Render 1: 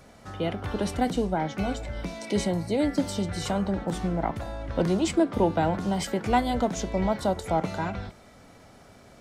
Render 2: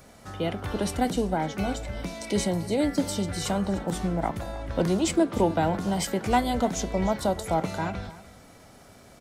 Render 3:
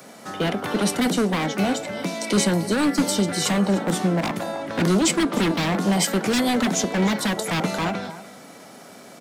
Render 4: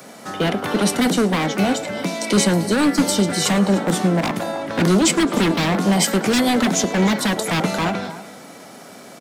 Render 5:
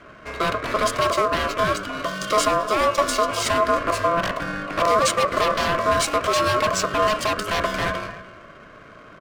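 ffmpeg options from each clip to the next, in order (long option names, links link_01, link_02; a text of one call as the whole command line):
ffmpeg -i in.wav -af "highshelf=frequency=7900:gain=9.5,aecho=1:1:302:0.133" out.wav
ffmpeg -i in.wav -filter_complex "[0:a]highpass=frequency=170:width=0.5412,highpass=frequency=170:width=1.3066,acrossover=split=300|2900[link_01][link_02][link_03];[link_02]aeval=exprs='0.0355*(abs(mod(val(0)/0.0355+3,4)-2)-1)':channel_layout=same[link_04];[link_01][link_04][link_03]amix=inputs=3:normalize=0,volume=8.5dB" out.wav
ffmpeg -i in.wav -filter_complex "[0:a]asplit=6[link_01][link_02][link_03][link_04][link_05][link_06];[link_02]adelay=107,afreqshift=33,volume=-21.5dB[link_07];[link_03]adelay=214,afreqshift=66,volume=-25.8dB[link_08];[link_04]adelay=321,afreqshift=99,volume=-30.1dB[link_09];[link_05]adelay=428,afreqshift=132,volume=-34.4dB[link_10];[link_06]adelay=535,afreqshift=165,volume=-38.7dB[link_11];[link_01][link_07][link_08][link_09][link_10][link_11]amix=inputs=6:normalize=0,volume=3.5dB" out.wav
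ffmpeg -i in.wav -af "adynamicsmooth=sensitivity=7:basefreq=1300,aeval=exprs='val(0)*sin(2*PI*850*n/s)':channel_layout=same" out.wav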